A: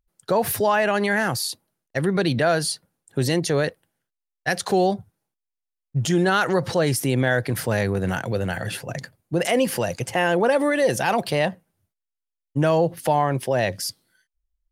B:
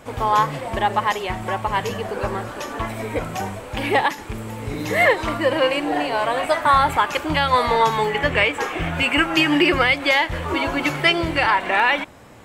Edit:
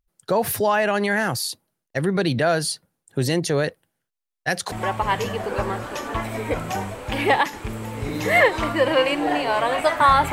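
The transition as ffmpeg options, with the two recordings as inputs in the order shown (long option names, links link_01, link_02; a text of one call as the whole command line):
ffmpeg -i cue0.wav -i cue1.wav -filter_complex "[0:a]apad=whole_dur=10.32,atrim=end=10.32,atrim=end=4.722[link_01];[1:a]atrim=start=1.368:end=6.97[link_02];[link_01][link_02]acrossfade=duration=0.004:curve1=hsin:curve2=hsin" out.wav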